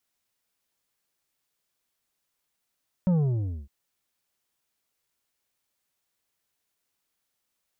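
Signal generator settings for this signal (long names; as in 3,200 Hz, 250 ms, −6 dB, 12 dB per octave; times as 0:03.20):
bass drop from 190 Hz, over 0.61 s, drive 7.5 dB, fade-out 0.60 s, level −19.5 dB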